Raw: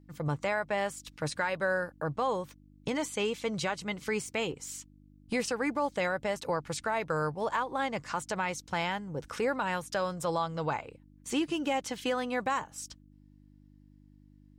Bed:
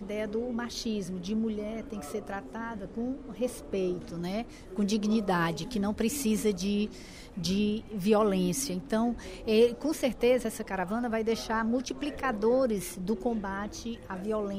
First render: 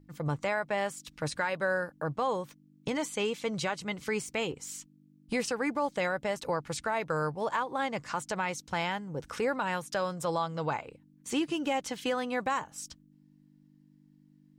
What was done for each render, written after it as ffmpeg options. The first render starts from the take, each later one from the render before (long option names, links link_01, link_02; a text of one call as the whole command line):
ffmpeg -i in.wav -af "bandreject=frequency=50:width_type=h:width=4,bandreject=frequency=100:width_type=h:width=4" out.wav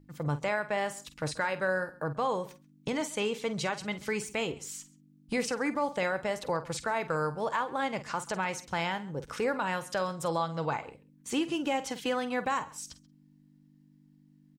ffmpeg -i in.wav -filter_complex "[0:a]asplit=2[link_01][link_02];[link_02]adelay=48,volume=-13dB[link_03];[link_01][link_03]amix=inputs=2:normalize=0,asplit=2[link_04][link_05];[link_05]adelay=134.1,volume=-21dB,highshelf=frequency=4000:gain=-3.02[link_06];[link_04][link_06]amix=inputs=2:normalize=0" out.wav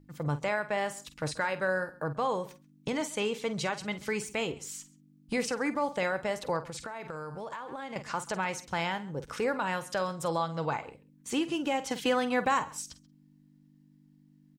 ffmpeg -i in.wav -filter_complex "[0:a]asettb=1/sr,asplit=3[link_01][link_02][link_03];[link_01]atrim=end=6.624[link_04];[link_02]atrim=start=6.62:end=7.96,asetpts=PTS-STARTPTS,afade=type=in:duration=0.004:curve=qsin,afade=type=out:start_time=1.336:duration=0.004:curve=qsin,acompressor=threshold=-35dB:ratio=12:attack=3.2:release=140:knee=1:detection=peak[link_05];[link_03]atrim=start=7.956[link_06];[link_04][link_05]acrossfade=duration=0.004:curve1=hsin:curve2=qsin[link_07];[link_07][link_06]acrossfade=duration=0.004:curve1=qsin:curve2=hsin,asplit=3[link_08][link_09][link_10];[link_08]atrim=end=11.912[link_11];[link_09]atrim=start=11.908:end=12.822,asetpts=PTS-STARTPTS,volume=3.5dB[link_12];[link_10]atrim=start=12.818[link_13];[link_11][link_12]acrossfade=duration=0.004:curve1=hsin:curve2=hsin[link_14];[link_14][link_13]acrossfade=duration=0.004:curve1=hsin:curve2=hsin" out.wav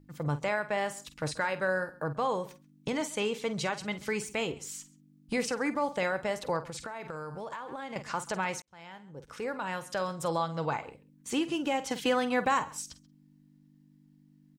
ffmpeg -i in.wav -filter_complex "[0:a]asplit=2[link_01][link_02];[link_01]atrim=end=8.62,asetpts=PTS-STARTPTS,afade=type=out:start_time=8.616:duration=0.004:curve=hsin[link_03];[link_02]atrim=start=8.62,asetpts=PTS-STARTPTS,afade=type=in:duration=1.59[link_04];[link_03][link_04]concat=n=2:v=0:a=1" out.wav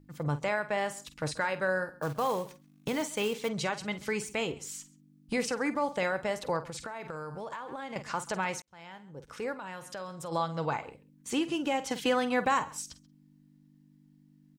ffmpeg -i in.wav -filter_complex "[0:a]asettb=1/sr,asplit=3[link_01][link_02][link_03];[link_01]atrim=end=2.024[link_04];[link_02]atrim=start=2.02:end=3.49,asetpts=PTS-STARTPTS,afade=type=in:duration=0.004:curve=qsin,afade=type=out:start_time=1.466:duration=0.004:curve=qsin,acrusher=bits=4:mode=log:mix=0:aa=0.000001[link_05];[link_03]atrim=start=3.486[link_06];[link_04][link_05]acrossfade=duration=0.004:curve1=hsin:curve2=qsin[link_07];[link_07][link_06]acrossfade=duration=0.004:curve1=qsin:curve2=hsin,asplit=3[link_08][link_09][link_10];[link_08]afade=type=out:start_time=9.53:duration=0.02[link_11];[link_09]acompressor=threshold=-42dB:ratio=2:attack=3.2:release=140:knee=1:detection=peak,afade=type=in:start_time=9.53:duration=0.02,afade=type=out:start_time=10.31:duration=0.02[link_12];[link_10]afade=type=in:start_time=10.31:duration=0.02[link_13];[link_11][link_12][link_13]amix=inputs=3:normalize=0" out.wav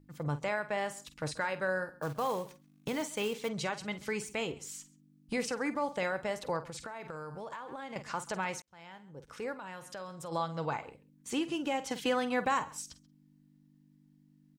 ffmpeg -i in.wav -af "volume=-3dB" out.wav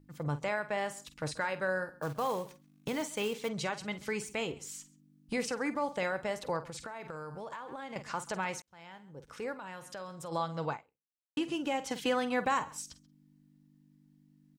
ffmpeg -i in.wav -filter_complex "[0:a]asplit=2[link_01][link_02];[link_01]atrim=end=11.37,asetpts=PTS-STARTPTS,afade=type=out:start_time=10.71:duration=0.66:curve=exp[link_03];[link_02]atrim=start=11.37,asetpts=PTS-STARTPTS,afade=type=in:duration=0.004:curve=hsin[link_04];[link_03][link_04]concat=n=2:v=0:a=1" out.wav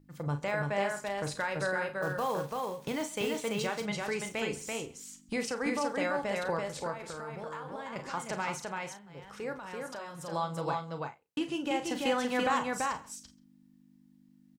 ffmpeg -i in.wav -filter_complex "[0:a]asplit=2[link_01][link_02];[link_02]adelay=35,volume=-10dB[link_03];[link_01][link_03]amix=inputs=2:normalize=0,aecho=1:1:336:0.708" out.wav